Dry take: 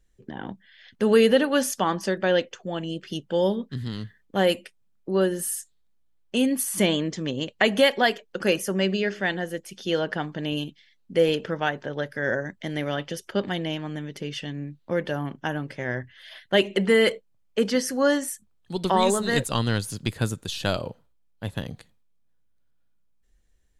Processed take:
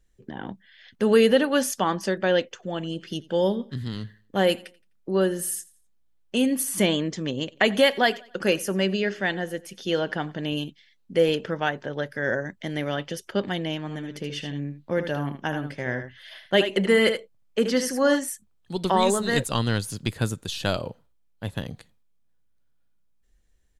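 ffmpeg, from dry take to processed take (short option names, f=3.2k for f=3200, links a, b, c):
-filter_complex "[0:a]asplit=3[a][b][c];[a]afade=t=out:st=2.62:d=0.02[d];[b]aecho=1:1:85|170|255:0.0794|0.0286|0.0103,afade=t=in:st=2.62:d=0.02,afade=t=out:st=6.81:d=0.02[e];[c]afade=t=in:st=6.81:d=0.02[f];[d][e][f]amix=inputs=3:normalize=0,asplit=3[g][h][i];[g]afade=t=out:st=7.51:d=0.02[j];[h]aecho=1:1:92|184|276:0.0708|0.0283|0.0113,afade=t=in:st=7.51:d=0.02,afade=t=out:st=10.51:d=0.02[k];[i]afade=t=in:st=10.51:d=0.02[l];[j][k][l]amix=inputs=3:normalize=0,asplit=3[m][n][o];[m]afade=t=out:st=13.86:d=0.02[p];[n]aecho=1:1:77:0.376,afade=t=in:st=13.86:d=0.02,afade=t=out:st=18.18:d=0.02[q];[o]afade=t=in:st=18.18:d=0.02[r];[p][q][r]amix=inputs=3:normalize=0"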